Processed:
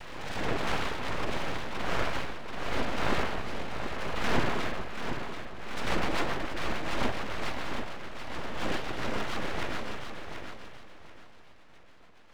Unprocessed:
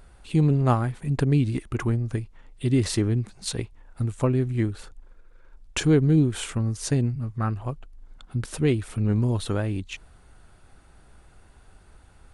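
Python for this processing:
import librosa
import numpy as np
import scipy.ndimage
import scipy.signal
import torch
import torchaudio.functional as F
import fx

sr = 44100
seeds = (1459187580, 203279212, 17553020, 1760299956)

p1 = fx.spec_flatten(x, sr, power=0.16)
p2 = scipy.signal.sosfilt(scipy.signal.butter(2, 1400.0, 'lowpass', fs=sr, output='sos'), p1)
p3 = fx.rider(p2, sr, range_db=4, speed_s=0.5)
p4 = p2 + (p3 * 10.0 ** (2.5 / 20.0))
p5 = fx.tube_stage(p4, sr, drive_db=16.0, bias=0.65)
p6 = fx.rev_spring(p5, sr, rt60_s=1.5, pass_ms=(39,), chirp_ms=50, drr_db=-1.0)
p7 = fx.noise_vocoder(p6, sr, seeds[0], bands=16)
p8 = fx.rotary_switch(p7, sr, hz=0.85, then_hz=7.0, switch_at_s=4.63)
p9 = np.abs(p8)
p10 = p9 + fx.echo_feedback(p9, sr, ms=734, feedback_pct=26, wet_db=-7.5, dry=0)
p11 = fx.pre_swell(p10, sr, db_per_s=36.0)
y = p11 * 10.0 ** (-4.0 / 20.0)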